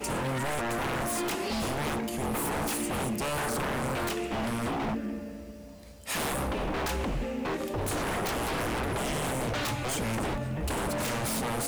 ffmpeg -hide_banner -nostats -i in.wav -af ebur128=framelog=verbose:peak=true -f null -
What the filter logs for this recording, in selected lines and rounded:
Integrated loudness:
  I:         -30.9 LUFS
  Threshold: -41.1 LUFS
Loudness range:
  LRA:         2.2 LU
  Threshold: -51.3 LUFS
  LRA low:   -32.7 LUFS
  LRA high:  -30.5 LUFS
True peak:
  Peak:      -22.4 dBFS